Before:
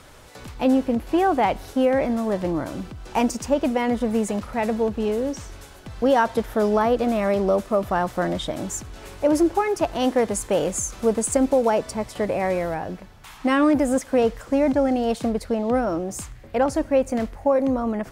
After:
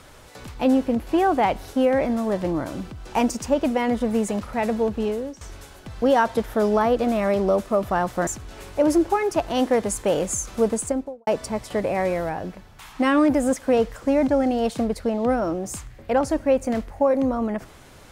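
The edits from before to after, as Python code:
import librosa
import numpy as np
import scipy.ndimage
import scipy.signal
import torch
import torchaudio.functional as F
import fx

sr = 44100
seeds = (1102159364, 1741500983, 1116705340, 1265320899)

y = fx.studio_fade_out(x, sr, start_s=11.11, length_s=0.61)
y = fx.edit(y, sr, fx.fade_out_to(start_s=5.02, length_s=0.39, floor_db=-15.0),
    fx.cut(start_s=8.27, length_s=0.45), tone=tone)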